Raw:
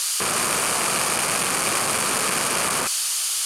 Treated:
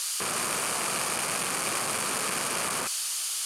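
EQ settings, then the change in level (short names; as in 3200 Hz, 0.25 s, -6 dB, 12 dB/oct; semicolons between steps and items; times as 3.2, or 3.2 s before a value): HPF 69 Hz; -7.0 dB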